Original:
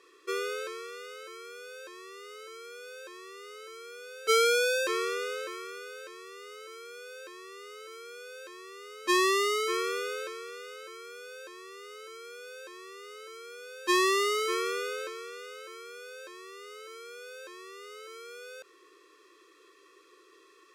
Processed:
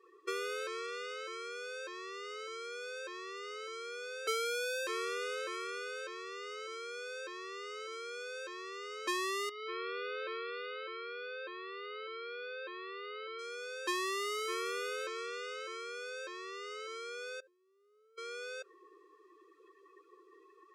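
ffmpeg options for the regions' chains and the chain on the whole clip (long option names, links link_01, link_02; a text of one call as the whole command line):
ffmpeg -i in.wav -filter_complex "[0:a]asettb=1/sr,asplit=3[link_01][link_02][link_03];[link_01]atrim=end=9.494[link_04];[link_02]atrim=start=9.49:end=13.39,asetpts=PTS-STARTPTS,afade=type=in:duration=0.004:curve=qsin,afade=type=out:start_time=3.896:duration=0.004:curve=qsin,lowpass=frequency=4300:width=0.5412,lowpass=frequency=4300:width=1.3066,acompressor=threshold=-35dB:ratio=10:attack=3.2:release=140:knee=1:detection=peak,aeval=exprs='clip(val(0),-1,0.0282)':channel_layout=same[link_05];[link_03]atrim=start=13.386[link_06];[link_04][link_05]acrossfade=duration=0.004:curve1=hsin:curve2=qsin[link_07];[link_07][link_06]acrossfade=duration=0.004:curve1=qsin:curve2=hsin,asettb=1/sr,asplit=3[link_08][link_09][link_10];[link_08]atrim=end=17.404[link_11];[link_09]atrim=start=17.4:end=18.18,asetpts=PTS-STARTPTS,afade=type=in:duration=0.004:curve=qsin,afade=type=out:start_time=0.776:duration=0.004:curve=qsin,agate=range=-33dB:threshold=-34dB:ratio=3:release=100:detection=peak,lowshelf=frequency=210:width_type=q:width=3:gain=-7[link_12];[link_10]atrim=start=18.176[link_13];[link_11][link_12]acrossfade=duration=0.004:curve1=hsin:curve2=qsin[link_14];[link_14][link_13]acrossfade=duration=0.004:curve1=qsin:curve2=hsin,afftdn=noise_reduction=21:noise_floor=-52,highpass=frequency=330:poles=1,acompressor=threshold=-40dB:ratio=3,volume=3.5dB" out.wav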